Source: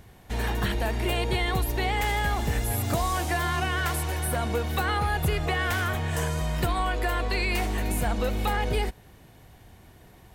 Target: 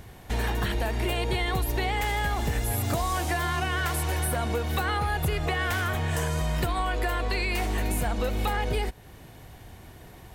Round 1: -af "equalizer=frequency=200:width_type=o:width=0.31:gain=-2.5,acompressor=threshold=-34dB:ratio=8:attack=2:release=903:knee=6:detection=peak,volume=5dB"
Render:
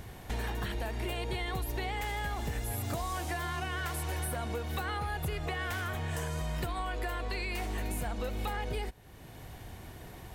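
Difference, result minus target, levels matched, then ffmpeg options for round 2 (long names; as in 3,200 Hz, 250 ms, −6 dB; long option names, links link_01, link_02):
downward compressor: peak gain reduction +8 dB
-af "equalizer=frequency=200:width_type=o:width=0.31:gain=-2.5,acompressor=threshold=-25dB:ratio=8:attack=2:release=903:knee=6:detection=peak,volume=5dB"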